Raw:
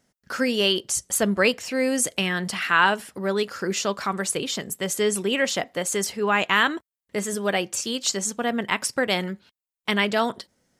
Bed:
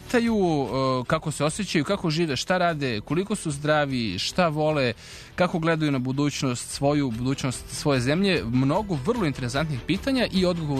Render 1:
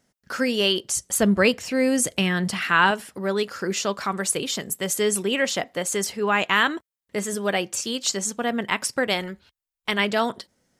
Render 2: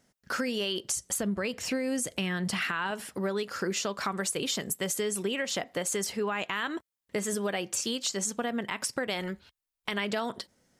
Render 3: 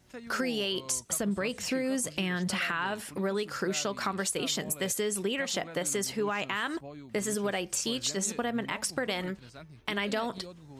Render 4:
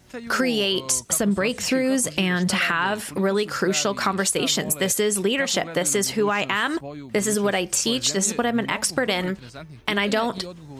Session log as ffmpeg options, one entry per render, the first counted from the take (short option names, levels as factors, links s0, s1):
-filter_complex "[0:a]asettb=1/sr,asplit=3[s0][s1][s2];[s0]atrim=end=1.184[s3];[s1]atrim=start=1.18:end=2.91,asetpts=PTS-STARTPTS,afade=t=in:d=0.004:c=qsin,afade=t=out:st=1.726:d=0.004:c=qsin,lowshelf=f=210:g=9[s4];[s2]atrim=start=2.906[s5];[s3][s4]acrossfade=d=0.004:c1=hsin:c2=qsin[s6];[s6][s5]acrossfade=d=0.004:c1=qsin:c2=hsin,asettb=1/sr,asplit=3[s7][s8][s9];[s7]atrim=end=4.254[s10];[s8]atrim=start=4.25:end=5.23,asetpts=PTS-STARTPTS,afade=t=in:d=0.004:c=qsin,afade=t=out:st=0.976:d=0.004:c=qsin,highshelf=f=8700:g=5.5[s11];[s9]atrim=start=5.226[s12];[s10][s11]acrossfade=d=0.004:c1=hsin:c2=qsin[s13];[s13][s12]acrossfade=d=0.004:c1=qsin:c2=hsin,asplit=3[s14][s15][s16];[s14]afade=t=out:st=9.12:d=0.02[s17];[s15]asubboost=boost=8.5:cutoff=61,afade=t=in:st=9.12:d=0.02,afade=t=out:st=9.98:d=0.02[s18];[s16]afade=t=in:st=9.98:d=0.02[s19];[s17][s18][s19]amix=inputs=3:normalize=0"
-af "alimiter=limit=0.158:level=0:latency=1:release=147,acompressor=threshold=0.0447:ratio=6"
-filter_complex "[1:a]volume=0.0708[s0];[0:a][s0]amix=inputs=2:normalize=0"
-af "volume=2.82"